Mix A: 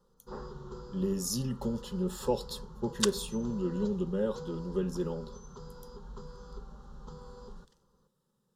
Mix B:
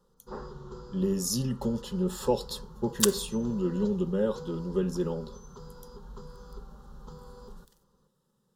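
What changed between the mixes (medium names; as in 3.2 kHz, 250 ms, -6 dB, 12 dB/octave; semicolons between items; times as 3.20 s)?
speech +3.5 dB; second sound: remove low-pass 6.2 kHz 12 dB/octave; reverb: on, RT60 0.70 s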